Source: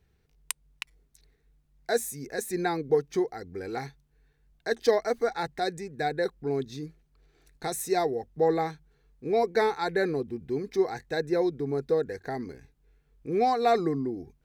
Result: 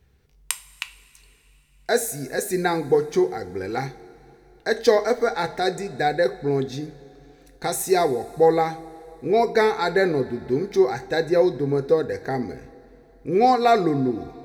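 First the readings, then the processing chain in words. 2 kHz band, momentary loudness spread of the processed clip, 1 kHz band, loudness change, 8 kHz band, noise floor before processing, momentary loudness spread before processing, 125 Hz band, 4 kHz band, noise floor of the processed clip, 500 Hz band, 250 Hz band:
+7.0 dB, 15 LU, +6.5 dB, +6.5 dB, +7.0 dB, -69 dBFS, 13 LU, +7.5 dB, +7.0 dB, -56 dBFS, +6.5 dB, +6.5 dB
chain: two-slope reverb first 0.33 s, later 3.3 s, from -18 dB, DRR 8.5 dB; trim +6.5 dB

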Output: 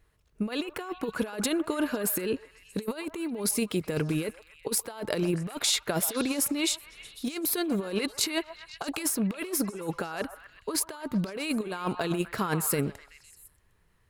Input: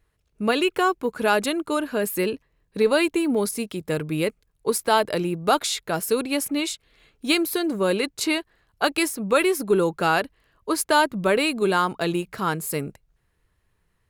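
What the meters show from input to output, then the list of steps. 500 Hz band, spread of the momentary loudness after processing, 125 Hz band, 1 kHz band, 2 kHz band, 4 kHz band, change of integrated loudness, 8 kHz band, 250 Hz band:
-10.0 dB, 9 LU, -1.5 dB, -13.5 dB, -10.5 dB, -5.0 dB, -6.5 dB, +0.5 dB, -4.5 dB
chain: compressor with a negative ratio -26 dBFS, ratio -0.5; repeats whose band climbs or falls 126 ms, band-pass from 910 Hz, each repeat 0.7 oct, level -8 dB; trim -2.5 dB

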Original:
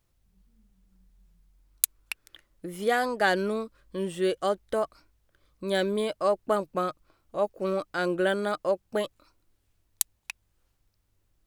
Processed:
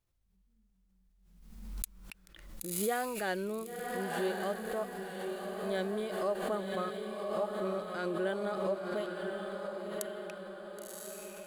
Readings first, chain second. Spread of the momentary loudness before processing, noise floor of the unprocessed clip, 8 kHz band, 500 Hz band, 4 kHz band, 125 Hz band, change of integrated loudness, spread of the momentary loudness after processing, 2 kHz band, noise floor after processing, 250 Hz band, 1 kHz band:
14 LU, -73 dBFS, -8.5 dB, -6.0 dB, -8.5 dB, -4.5 dB, -7.5 dB, 11 LU, -8.0 dB, -71 dBFS, -5.0 dB, -7.0 dB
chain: echo that smears into a reverb 1049 ms, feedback 53%, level -4 dB; harmonic-percussive split percussive -7 dB; swell ahead of each attack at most 49 dB/s; trim -8 dB

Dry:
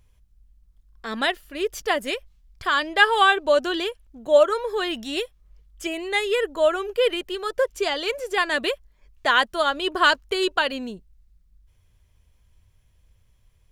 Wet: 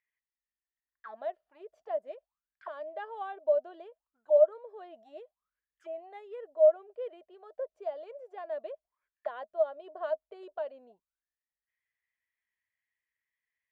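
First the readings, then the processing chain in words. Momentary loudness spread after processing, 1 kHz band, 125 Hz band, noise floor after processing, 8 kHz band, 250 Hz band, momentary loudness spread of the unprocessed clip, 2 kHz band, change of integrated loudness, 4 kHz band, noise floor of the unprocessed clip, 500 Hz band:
25 LU, -19.0 dB, no reading, under -85 dBFS, under -40 dB, under -25 dB, 13 LU, under -25 dB, -9.5 dB, under -35 dB, -61 dBFS, -6.5 dB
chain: auto-wah 630–2000 Hz, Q 15, down, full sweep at -26 dBFS

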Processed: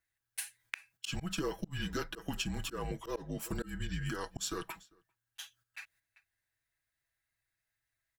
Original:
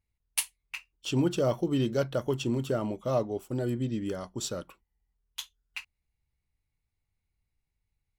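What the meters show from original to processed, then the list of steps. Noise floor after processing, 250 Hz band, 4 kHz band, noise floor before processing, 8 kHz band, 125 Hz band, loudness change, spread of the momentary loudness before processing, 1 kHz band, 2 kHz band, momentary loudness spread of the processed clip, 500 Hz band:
under -85 dBFS, -10.0 dB, -2.5 dB, -84 dBFS, -5.0 dB, -8.5 dB, -9.0 dB, 15 LU, -5.0 dB, 0.0 dB, 13 LU, -12.5 dB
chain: high-pass 78 Hz 12 dB/octave; frequency shift -160 Hz; tilt EQ +1.5 dB/octave; comb 6.1 ms, depth 58%; echo from a far wall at 68 m, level -29 dB; gate -59 dBFS, range -11 dB; slow attack 273 ms; peaking EQ 1.6 kHz +14 dB 0.37 oct; compression 5:1, threshold -44 dBFS, peak gain reduction 19 dB; trim +9 dB

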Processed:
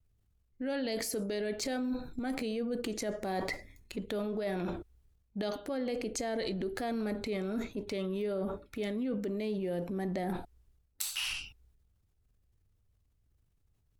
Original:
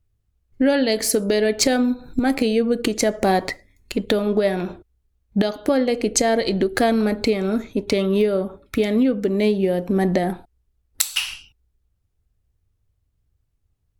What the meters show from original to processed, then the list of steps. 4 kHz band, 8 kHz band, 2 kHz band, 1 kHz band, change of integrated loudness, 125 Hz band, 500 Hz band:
-13.5 dB, -16.0 dB, -14.0 dB, -15.0 dB, -15.0 dB, -13.5 dB, -15.0 dB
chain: reverse; compression 6:1, threshold -28 dBFS, peak gain reduction 14 dB; reverse; transient shaper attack -2 dB, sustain +7 dB; vibrato 1.2 Hz 38 cents; trim -4.5 dB

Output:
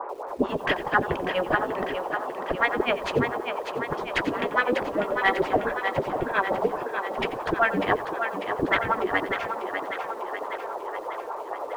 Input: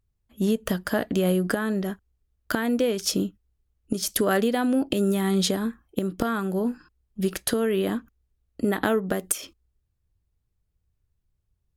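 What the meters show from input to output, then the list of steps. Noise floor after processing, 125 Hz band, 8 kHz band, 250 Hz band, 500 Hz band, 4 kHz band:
-36 dBFS, -6.5 dB, under -15 dB, -7.0 dB, +0.5 dB, -2.5 dB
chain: spectral gate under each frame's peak -10 dB weak; in parallel at -9.5 dB: sine folder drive 16 dB, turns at -11 dBFS; on the sum: tremolo 7.2 Hz, depth 92%; band noise 380–1100 Hz -38 dBFS; bit crusher 11-bit; LFO low-pass sine 4.6 Hz 300–2500 Hz; on a send: thinning echo 596 ms, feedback 62%, high-pass 290 Hz, level -6.5 dB; on the sum: bit-crushed delay 89 ms, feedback 35%, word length 7-bit, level -14.5 dB; trim +1 dB

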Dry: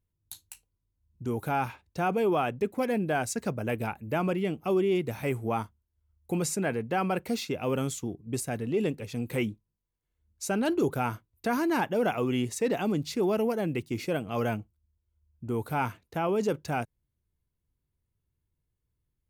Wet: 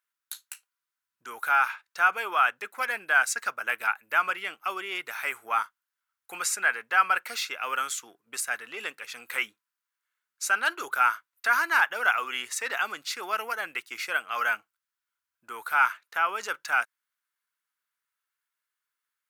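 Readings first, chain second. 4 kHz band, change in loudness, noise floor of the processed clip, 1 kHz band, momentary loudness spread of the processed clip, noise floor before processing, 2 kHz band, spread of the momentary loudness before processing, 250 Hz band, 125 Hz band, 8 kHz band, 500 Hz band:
+6.0 dB, +2.5 dB, under -85 dBFS, +5.5 dB, 13 LU, -82 dBFS, +13.0 dB, 8 LU, -23.0 dB, under -30 dB, +5.0 dB, -12.0 dB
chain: resonant high-pass 1.4 kHz, resonance Q 3.4; trim +4.5 dB

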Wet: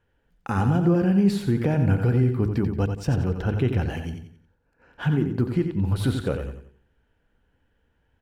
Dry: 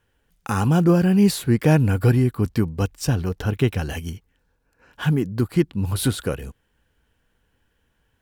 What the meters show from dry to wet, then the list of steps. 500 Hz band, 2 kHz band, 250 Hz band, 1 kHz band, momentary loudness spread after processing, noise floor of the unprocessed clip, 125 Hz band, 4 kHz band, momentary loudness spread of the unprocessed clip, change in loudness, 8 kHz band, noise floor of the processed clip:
-3.0 dB, -4.5 dB, -2.5 dB, -3.0 dB, 10 LU, -69 dBFS, -2.0 dB, -8.0 dB, 13 LU, -2.5 dB, under -10 dB, -70 dBFS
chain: low-pass 1.6 kHz 6 dB/octave; band-stop 1.1 kHz, Q 11; de-hum 53.1 Hz, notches 9; peak limiter -13.5 dBFS, peak gain reduction 7.5 dB; feedback delay 89 ms, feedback 35%, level -7.5 dB

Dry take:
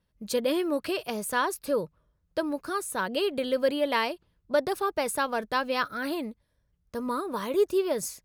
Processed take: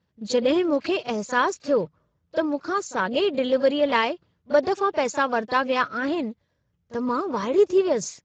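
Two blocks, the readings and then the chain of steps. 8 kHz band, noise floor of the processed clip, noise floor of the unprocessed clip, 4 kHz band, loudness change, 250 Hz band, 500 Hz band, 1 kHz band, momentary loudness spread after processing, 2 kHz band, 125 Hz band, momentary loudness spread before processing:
0.0 dB, -73 dBFS, -74 dBFS, +3.0 dB, +5.0 dB, +5.5 dB, +5.5 dB, +5.0 dB, 7 LU, +4.5 dB, no reading, 7 LU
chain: on a send: reverse echo 36 ms -17 dB; on the sum: trim +5 dB; Speex 13 kbps 16 kHz

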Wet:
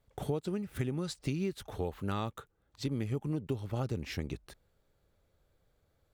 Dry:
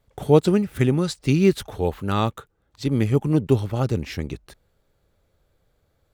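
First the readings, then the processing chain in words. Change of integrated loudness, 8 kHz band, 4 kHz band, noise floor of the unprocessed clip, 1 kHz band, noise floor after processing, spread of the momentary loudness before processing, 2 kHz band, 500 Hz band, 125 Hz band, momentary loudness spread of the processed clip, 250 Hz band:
-15.0 dB, -11.0 dB, -11.0 dB, -69 dBFS, -13.5 dB, -75 dBFS, 12 LU, -12.5 dB, -16.5 dB, -13.5 dB, 5 LU, -14.5 dB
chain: compression 12:1, threshold -24 dBFS, peak gain reduction 15.5 dB; trim -6 dB

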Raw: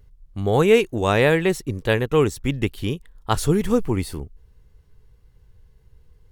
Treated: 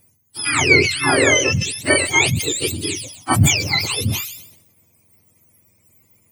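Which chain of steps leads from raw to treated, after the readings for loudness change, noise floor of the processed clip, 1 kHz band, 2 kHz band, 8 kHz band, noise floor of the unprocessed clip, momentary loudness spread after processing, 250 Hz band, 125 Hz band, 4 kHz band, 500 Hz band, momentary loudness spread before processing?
+4.5 dB, -60 dBFS, +2.5 dB, +10.5 dB, +17.0 dB, -55 dBFS, 12 LU, -1.0 dB, +3.0 dB, +12.5 dB, -3.0 dB, 12 LU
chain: spectrum inverted on a logarithmic axis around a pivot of 1 kHz; feedback echo behind a high-pass 127 ms, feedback 40%, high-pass 3.7 kHz, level -16 dB; decay stretcher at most 69 dB/s; trim +5.5 dB

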